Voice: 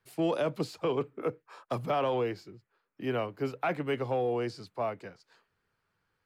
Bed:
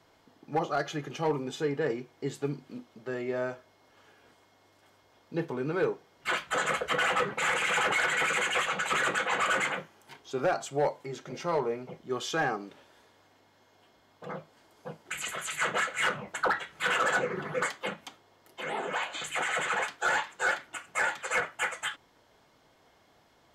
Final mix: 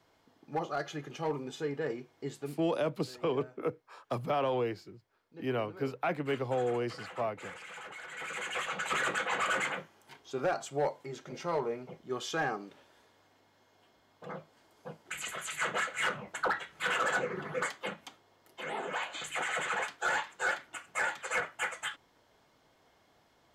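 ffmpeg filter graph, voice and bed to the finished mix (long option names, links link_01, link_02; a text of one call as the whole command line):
ffmpeg -i stem1.wav -i stem2.wav -filter_complex "[0:a]adelay=2400,volume=-1.5dB[link_01];[1:a]volume=10.5dB,afade=type=out:start_time=2.33:duration=0.39:silence=0.199526,afade=type=in:start_time=8.06:duration=0.88:silence=0.16788[link_02];[link_01][link_02]amix=inputs=2:normalize=0" out.wav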